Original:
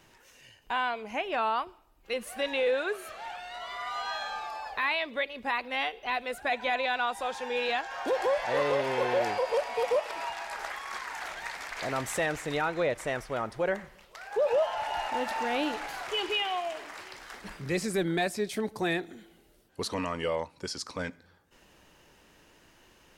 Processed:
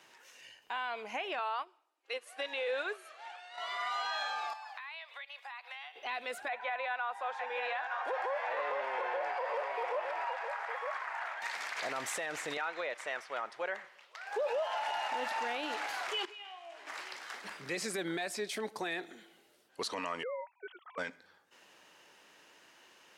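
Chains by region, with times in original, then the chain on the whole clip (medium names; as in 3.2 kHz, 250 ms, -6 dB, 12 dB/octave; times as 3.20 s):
1.39–3.58 s: brick-wall FIR band-pass 260–12000 Hz + upward expansion, over -45 dBFS
4.53–5.96 s: steep high-pass 700 Hz + compression 8:1, threshold -43 dBFS
6.48–11.42 s: three-band isolator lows -21 dB, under 490 Hz, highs -17 dB, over 2.2 kHz + delay 910 ms -9 dB
12.57–14.27 s: high-pass 870 Hz 6 dB/octave + treble shelf 6.5 kHz -11.5 dB
16.25–16.87 s: treble shelf 11 kHz -5.5 dB + compression, threshold -37 dBFS + feedback comb 68 Hz, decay 0.59 s, mix 80%
20.23–20.98 s: formants replaced by sine waves + compression 4:1, threshold -34 dBFS
whole clip: frequency weighting A; peak limiter -27 dBFS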